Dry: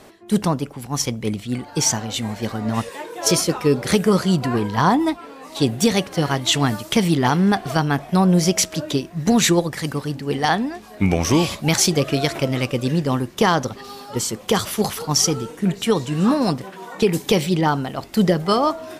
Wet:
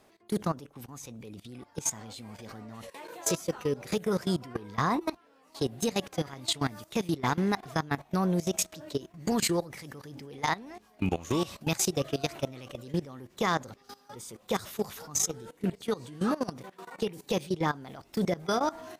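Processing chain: level held to a coarse grid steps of 18 dB; formant shift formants +2 st; trim -8 dB

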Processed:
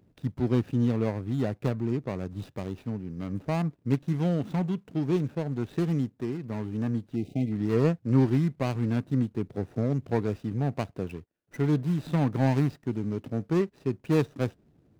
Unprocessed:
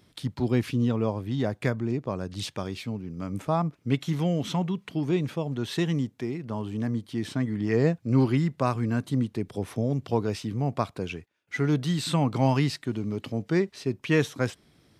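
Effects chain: median filter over 41 samples; time-frequency box 7.16–7.52 s, 810–2000 Hz -30 dB

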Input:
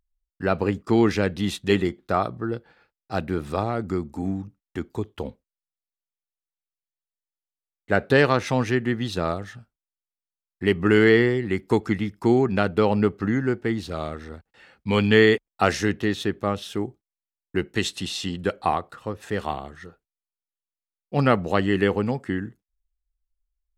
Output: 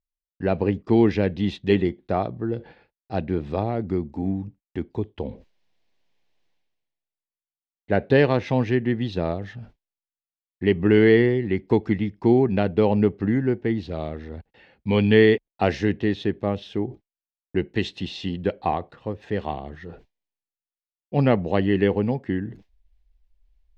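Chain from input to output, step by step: gate with hold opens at -50 dBFS; peaking EQ 1.3 kHz -12.5 dB 0.54 oct; reverse; upward compressor, threshold -33 dBFS; reverse; distance through air 240 m; trim +2 dB

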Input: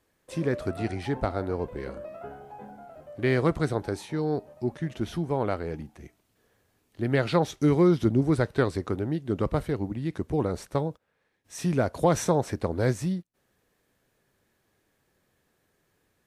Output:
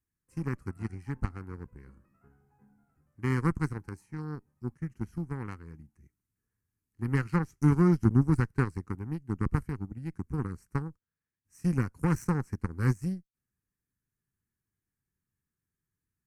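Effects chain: tone controls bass +11 dB, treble +7 dB; Chebyshev shaper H 3 -15 dB, 4 -29 dB, 5 -40 dB, 7 -25 dB, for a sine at -5 dBFS; static phaser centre 1.5 kHz, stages 4; trim -3 dB

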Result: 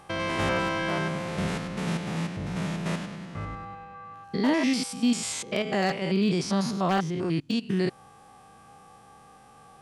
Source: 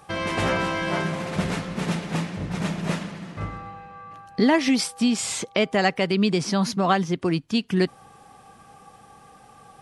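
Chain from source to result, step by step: spectrogram pixelated in time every 100 ms; wavefolder -14.5 dBFS; trim -1.5 dB

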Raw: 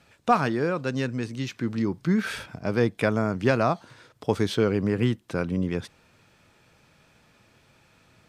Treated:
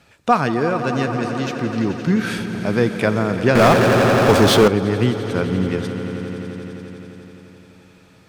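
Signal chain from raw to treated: echo with a slow build-up 86 ms, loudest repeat 5, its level -14 dB; 3.55–4.68 s: power-law waveshaper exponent 0.5; trim +5 dB

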